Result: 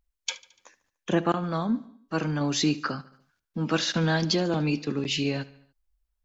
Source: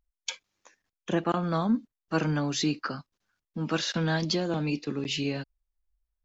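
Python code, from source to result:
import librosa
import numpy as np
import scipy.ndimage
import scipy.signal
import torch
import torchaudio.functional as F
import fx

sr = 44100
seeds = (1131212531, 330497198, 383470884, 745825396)

y = fx.comb_fb(x, sr, f0_hz=140.0, decay_s=0.73, harmonics='all', damping=0.0, mix_pct=40, at=(1.33, 2.41))
y = fx.echo_feedback(y, sr, ms=73, feedback_pct=56, wet_db=-20)
y = F.gain(torch.from_numpy(y), 3.0).numpy()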